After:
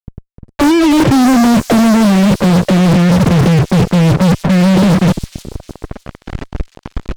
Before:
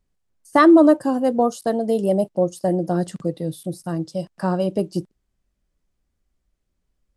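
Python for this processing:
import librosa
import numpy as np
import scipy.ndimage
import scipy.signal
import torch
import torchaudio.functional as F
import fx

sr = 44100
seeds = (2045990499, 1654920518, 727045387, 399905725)

p1 = fx.filter_sweep_lowpass(x, sr, from_hz=120.0, to_hz=3000.0, start_s=5.09, end_s=6.14, q=0.79)
p2 = fx.over_compress(p1, sr, threshold_db=-43.0, ratio=-1.0)
p3 = fx.high_shelf(p2, sr, hz=2000.0, db=-6.5)
p4 = fx.dispersion(p3, sr, late='lows', ms=71.0, hz=720.0)
p5 = fx.fuzz(p4, sr, gain_db=62.0, gate_db=-57.0)
p6 = p5 + fx.echo_wet_highpass(p5, sr, ms=305, feedback_pct=41, hz=5200.0, wet_db=-4.5, dry=0)
y = p6 * 10.0 ** (6.0 / 20.0)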